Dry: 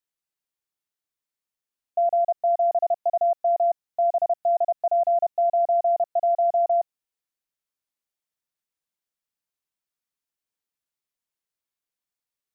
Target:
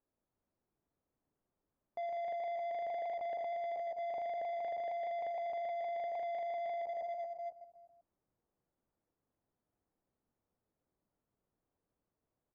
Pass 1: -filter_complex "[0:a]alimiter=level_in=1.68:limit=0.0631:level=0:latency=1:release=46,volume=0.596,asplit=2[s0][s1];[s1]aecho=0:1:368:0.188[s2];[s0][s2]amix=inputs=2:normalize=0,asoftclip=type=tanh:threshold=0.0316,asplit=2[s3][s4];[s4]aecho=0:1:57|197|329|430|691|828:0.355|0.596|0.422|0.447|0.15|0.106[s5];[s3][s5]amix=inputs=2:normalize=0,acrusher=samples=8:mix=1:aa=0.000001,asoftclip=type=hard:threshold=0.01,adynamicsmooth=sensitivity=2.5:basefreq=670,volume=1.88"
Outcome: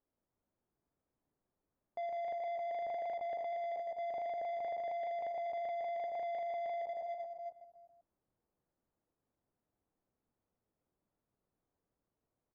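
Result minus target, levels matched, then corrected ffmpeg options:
saturation: distortion +20 dB
-filter_complex "[0:a]alimiter=level_in=1.68:limit=0.0631:level=0:latency=1:release=46,volume=0.596,asplit=2[s0][s1];[s1]aecho=0:1:368:0.188[s2];[s0][s2]amix=inputs=2:normalize=0,asoftclip=type=tanh:threshold=0.112,asplit=2[s3][s4];[s4]aecho=0:1:57|197|329|430|691|828:0.355|0.596|0.422|0.447|0.15|0.106[s5];[s3][s5]amix=inputs=2:normalize=0,acrusher=samples=8:mix=1:aa=0.000001,asoftclip=type=hard:threshold=0.01,adynamicsmooth=sensitivity=2.5:basefreq=670,volume=1.88"

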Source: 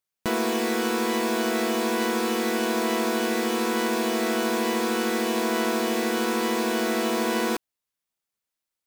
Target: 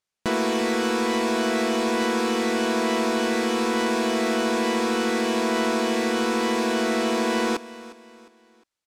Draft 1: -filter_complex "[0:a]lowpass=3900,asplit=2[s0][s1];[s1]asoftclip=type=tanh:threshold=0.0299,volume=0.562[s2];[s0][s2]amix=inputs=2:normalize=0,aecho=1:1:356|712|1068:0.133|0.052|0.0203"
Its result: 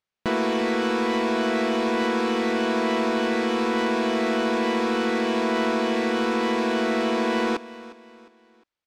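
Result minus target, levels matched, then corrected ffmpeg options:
8 kHz band -8.5 dB
-filter_complex "[0:a]lowpass=7900,asplit=2[s0][s1];[s1]asoftclip=type=tanh:threshold=0.0299,volume=0.562[s2];[s0][s2]amix=inputs=2:normalize=0,aecho=1:1:356|712|1068:0.133|0.052|0.0203"

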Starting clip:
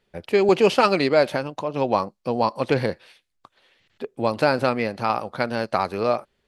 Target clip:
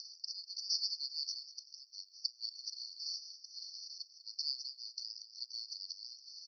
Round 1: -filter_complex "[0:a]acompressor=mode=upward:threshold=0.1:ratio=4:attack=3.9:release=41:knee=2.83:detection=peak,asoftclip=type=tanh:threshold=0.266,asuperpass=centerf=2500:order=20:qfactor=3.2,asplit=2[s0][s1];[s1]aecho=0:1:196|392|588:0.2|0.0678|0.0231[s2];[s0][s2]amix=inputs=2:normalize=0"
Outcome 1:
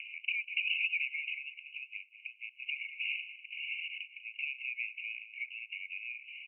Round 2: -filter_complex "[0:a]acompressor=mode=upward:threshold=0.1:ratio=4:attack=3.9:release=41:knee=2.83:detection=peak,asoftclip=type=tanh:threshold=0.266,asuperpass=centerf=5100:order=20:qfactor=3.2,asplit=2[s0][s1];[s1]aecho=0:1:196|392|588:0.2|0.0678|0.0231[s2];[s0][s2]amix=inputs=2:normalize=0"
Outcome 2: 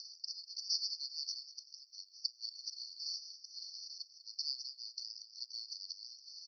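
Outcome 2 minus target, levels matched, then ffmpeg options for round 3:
saturation: distortion +9 dB
-filter_complex "[0:a]acompressor=mode=upward:threshold=0.1:ratio=4:attack=3.9:release=41:knee=2.83:detection=peak,asoftclip=type=tanh:threshold=0.562,asuperpass=centerf=5100:order=20:qfactor=3.2,asplit=2[s0][s1];[s1]aecho=0:1:196|392|588:0.2|0.0678|0.0231[s2];[s0][s2]amix=inputs=2:normalize=0"

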